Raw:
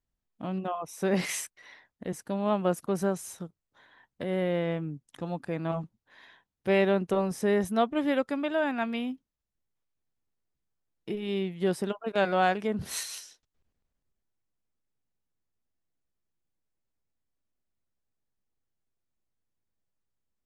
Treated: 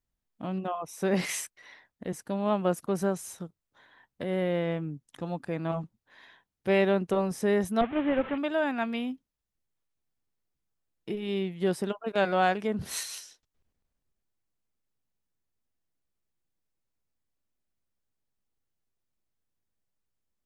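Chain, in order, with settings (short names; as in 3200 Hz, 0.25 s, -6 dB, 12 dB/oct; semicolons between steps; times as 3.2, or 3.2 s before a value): 7.81–8.38 delta modulation 16 kbps, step -34 dBFS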